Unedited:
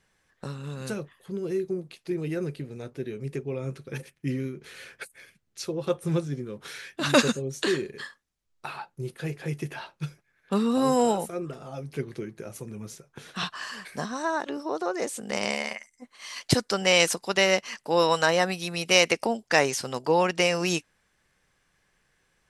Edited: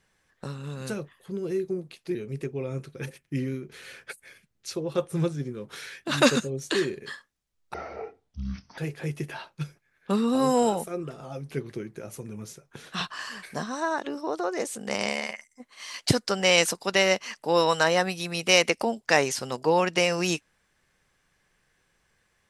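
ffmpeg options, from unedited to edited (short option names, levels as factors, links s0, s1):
-filter_complex "[0:a]asplit=4[s0][s1][s2][s3];[s0]atrim=end=2.152[s4];[s1]atrim=start=3.068:end=8.664[s5];[s2]atrim=start=8.66:end=9.2,asetpts=PTS-STARTPTS,asetrate=22932,aresample=44100,atrim=end_sample=45796,asetpts=PTS-STARTPTS[s6];[s3]atrim=start=9.196[s7];[s4][s5]acrossfade=d=0.004:c1=hsin:c2=hsin[s8];[s8][s6]acrossfade=d=0.004:c1=hsin:c2=hsin[s9];[s9][s7]acrossfade=d=0.004:c1=hsin:c2=hsin"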